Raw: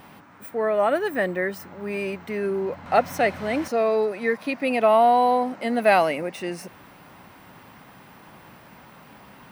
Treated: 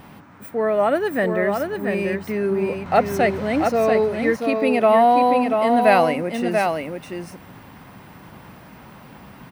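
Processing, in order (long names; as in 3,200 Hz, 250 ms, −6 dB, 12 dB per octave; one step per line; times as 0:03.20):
low-shelf EQ 270 Hz +8 dB
on a send: single-tap delay 686 ms −5 dB
on the sum: level +1 dB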